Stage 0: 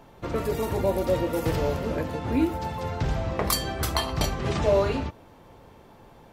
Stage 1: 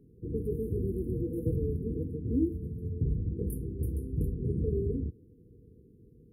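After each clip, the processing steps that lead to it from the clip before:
high-pass filter 62 Hz
spectral tilt −2.5 dB per octave
brick-wall band-stop 500–8,800 Hz
level −9 dB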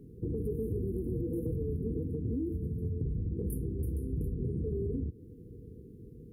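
brickwall limiter −26 dBFS, peak gain reduction 8 dB
downward compressor 3 to 1, threshold −40 dBFS, peak gain reduction 8.5 dB
level +7.5 dB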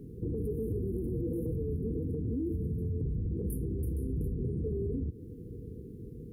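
brickwall limiter −31.5 dBFS, peak gain reduction 7 dB
level +5 dB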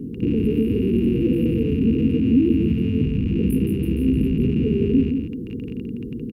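loose part that buzzes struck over −38 dBFS, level −41 dBFS
hollow resonant body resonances 240/2,800 Hz, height 16 dB, ringing for 30 ms
on a send: single-tap delay 169 ms −6 dB
on the sum: level +5 dB

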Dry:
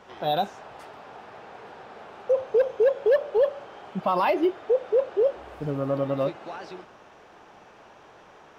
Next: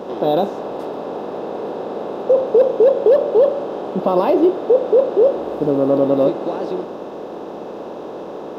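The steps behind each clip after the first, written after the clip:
compressor on every frequency bin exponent 0.6
octave-band graphic EQ 125/250/500/2,000 Hz −3/+11/+5/−10 dB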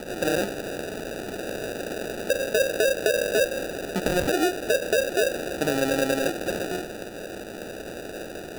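downward compressor, threshold −13 dBFS, peak gain reduction 5.5 dB
decimation without filtering 41×
level −6 dB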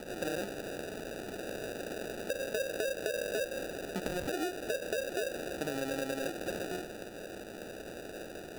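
downward compressor, threshold −23 dBFS, peak gain reduction 6 dB
level −8 dB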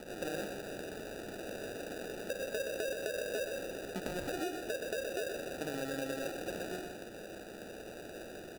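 single-tap delay 124 ms −6 dB
level −3.5 dB

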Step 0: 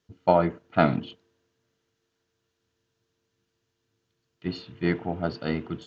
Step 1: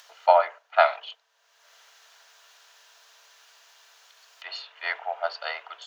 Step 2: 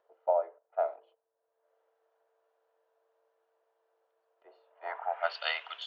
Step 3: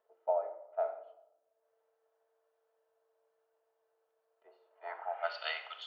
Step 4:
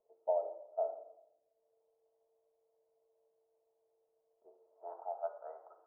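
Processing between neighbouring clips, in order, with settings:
Butterworth high-pass 620 Hz 48 dB per octave; upward compression, threshold −43 dBFS; level +5 dB
high-shelf EQ 5,800 Hz +10 dB; low-pass filter sweep 410 Hz → 3,200 Hz, 0:04.63–0:05.37; level −4.5 dB
rectangular room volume 2,900 cubic metres, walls furnished, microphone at 1.5 metres; level −5.5 dB
Gaussian smoothing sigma 12 samples; level +4 dB

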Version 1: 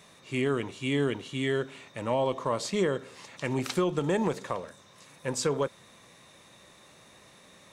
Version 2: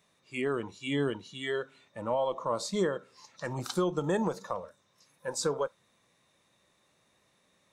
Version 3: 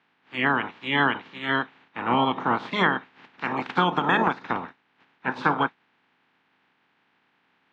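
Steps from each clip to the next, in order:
noise reduction from a noise print of the clip's start 13 dB; level −1.5 dB
ceiling on every frequency bin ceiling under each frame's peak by 28 dB; loudspeaker in its box 140–2,900 Hz, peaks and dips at 170 Hz +4 dB, 260 Hz +7 dB, 580 Hz −7 dB, 860 Hz +5 dB, 1,600 Hz +4 dB; level +7 dB

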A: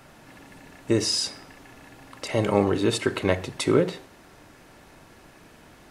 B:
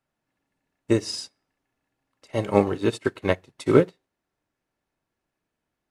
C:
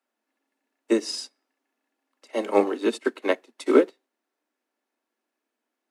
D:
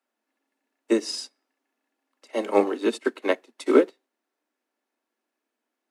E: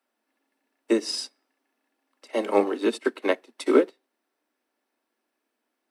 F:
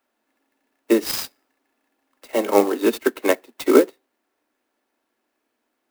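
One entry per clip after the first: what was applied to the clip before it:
expander for the loud parts 2.5 to 1, over −41 dBFS; level +6 dB
Butterworth high-pass 220 Hz 96 dB per octave
no processing that can be heard
notch filter 6,800 Hz, Q 7.8; in parallel at +0.5 dB: downward compressor, threshold −28 dBFS, peak gain reduction 16.5 dB; on the sum: level −3 dB
converter with an unsteady clock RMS 0.034 ms; level +5 dB

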